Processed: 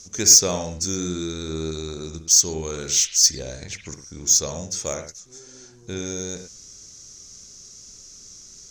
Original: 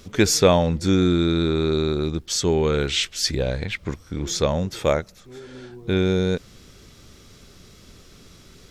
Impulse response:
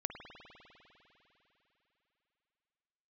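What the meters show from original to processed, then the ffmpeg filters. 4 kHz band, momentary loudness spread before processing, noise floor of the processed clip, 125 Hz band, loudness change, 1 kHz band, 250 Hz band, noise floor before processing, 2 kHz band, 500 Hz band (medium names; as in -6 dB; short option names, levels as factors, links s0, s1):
+2.0 dB, 13 LU, -46 dBFS, -10.0 dB, +2.5 dB, -9.0 dB, -9.5 dB, -50 dBFS, -8.5 dB, -9.5 dB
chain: -filter_complex "[0:a]lowpass=f=6300:t=q:w=6.2,aexciter=amount=3.8:drive=7.2:freq=4800[s0];[1:a]atrim=start_sample=2205,atrim=end_sample=6174[s1];[s0][s1]afir=irnorm=-1:irlink=0,volume=0.376"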